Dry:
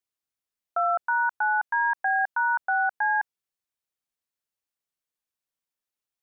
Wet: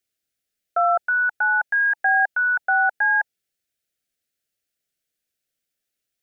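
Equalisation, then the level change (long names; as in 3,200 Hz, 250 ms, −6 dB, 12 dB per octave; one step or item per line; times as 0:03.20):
dynamic equaliser 870 Hz, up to +5 dB, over −40 dBFS, Q 5.7
Butterworth band-reject 990 Hz, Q 1.5
+8.0 dB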